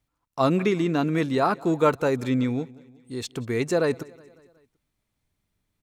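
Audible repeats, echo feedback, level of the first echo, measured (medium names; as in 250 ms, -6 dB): 3, 57%, -23.5 dB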